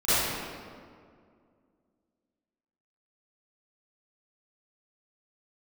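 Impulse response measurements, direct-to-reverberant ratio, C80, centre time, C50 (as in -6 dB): -19.5 dB, -3.5 dB, 0.167 s, -9.5 dB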